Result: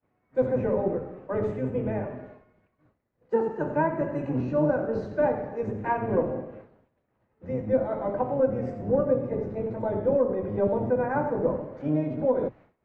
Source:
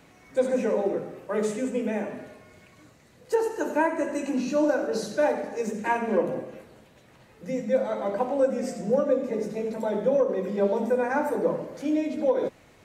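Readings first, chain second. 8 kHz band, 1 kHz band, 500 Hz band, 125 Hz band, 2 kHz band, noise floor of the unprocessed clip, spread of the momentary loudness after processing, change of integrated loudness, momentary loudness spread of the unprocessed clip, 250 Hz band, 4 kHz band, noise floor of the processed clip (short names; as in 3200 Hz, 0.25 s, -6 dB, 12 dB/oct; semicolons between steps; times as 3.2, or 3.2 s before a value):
under -25 dB, -1.0 dB, -1.0 dB, +8.5 dB, -4.5 dB, -56 dBFS, 7 LU, -1.0 dB, 7 LU, -1.0 dB, under -15 dB, -74 dBFS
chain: octaver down 1 oct, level +2 dB; LPF 1400 Hz 12 dB/oct; low shelf 160 Hz -9 dB; expander -45 dBFS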